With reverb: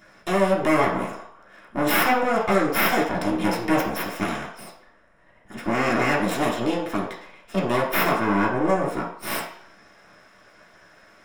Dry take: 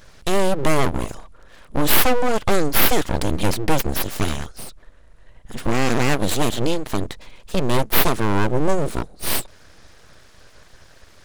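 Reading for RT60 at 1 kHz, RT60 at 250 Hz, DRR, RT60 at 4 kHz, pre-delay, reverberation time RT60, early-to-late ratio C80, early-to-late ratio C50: 0.65 s, 0.45 s, -5.5 dB, 0.60 s, 3 ms, 0.60 s, 9.0 dB, 5.5 dB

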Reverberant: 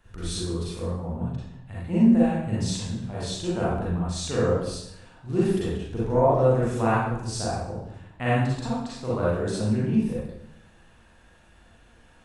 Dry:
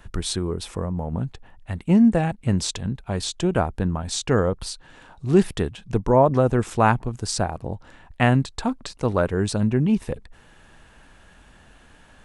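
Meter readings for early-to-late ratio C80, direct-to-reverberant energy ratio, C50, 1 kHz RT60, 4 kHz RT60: 2.0 dB, -8.5 dB, -3.5 dB, 0.75 s, 0.65 s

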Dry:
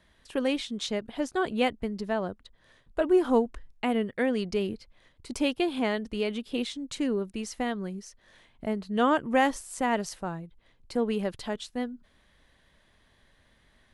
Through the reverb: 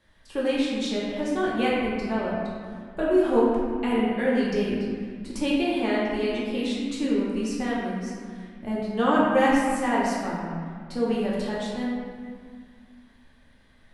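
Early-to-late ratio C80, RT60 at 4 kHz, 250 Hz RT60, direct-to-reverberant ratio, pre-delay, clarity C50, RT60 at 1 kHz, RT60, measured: 0.0 dB, 1.3 s, 2.5 s, -7.0 dB, 3 ms, -1.5 dB, 2.0 s, 1.9 s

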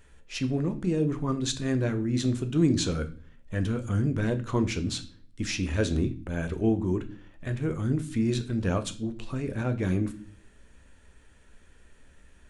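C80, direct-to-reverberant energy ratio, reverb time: 20.0 dB, 8.0 dB, 0.40 s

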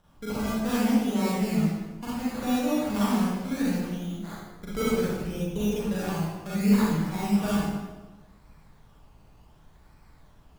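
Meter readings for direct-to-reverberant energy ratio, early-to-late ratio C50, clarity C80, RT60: -9.0 dB, -4.0 dB, 0.5 dB, 1.1 s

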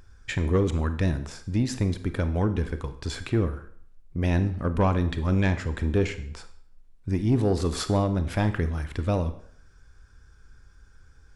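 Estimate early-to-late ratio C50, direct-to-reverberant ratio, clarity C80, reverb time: 12.5 dB, 10.0 dB, 15.5 dB, 0.60 s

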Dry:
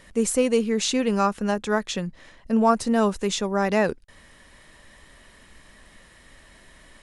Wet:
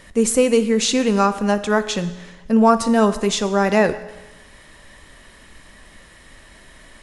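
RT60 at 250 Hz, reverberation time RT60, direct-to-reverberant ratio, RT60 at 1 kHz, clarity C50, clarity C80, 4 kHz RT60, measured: 1.1 s, 1.1 s, 11.0 dB, 1.1 s, 13.5 dB, 15.0 dB, 1.1 s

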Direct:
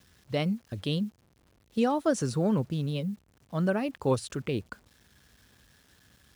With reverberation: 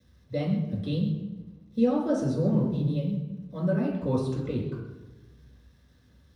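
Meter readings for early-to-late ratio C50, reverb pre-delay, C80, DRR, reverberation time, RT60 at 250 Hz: 3.5 dB, 3 ms, 5.5 dB, -5.0 dB, 1.1 s, 1.3 s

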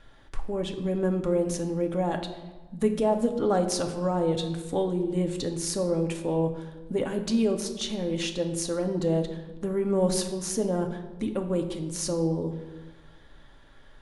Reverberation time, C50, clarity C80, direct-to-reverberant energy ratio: 1.3 s, 9.0 dB, 11.0 dB, 4.0 dB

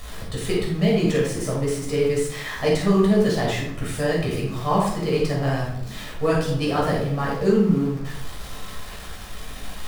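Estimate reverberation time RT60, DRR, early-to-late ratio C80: 0.70 s, -5.0 dB, 5.5 dB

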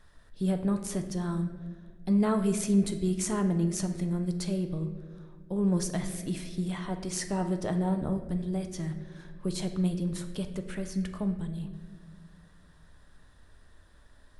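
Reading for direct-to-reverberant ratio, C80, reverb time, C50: 6.0 dB, 11.0 dB, 1.7 s, 9.5 dB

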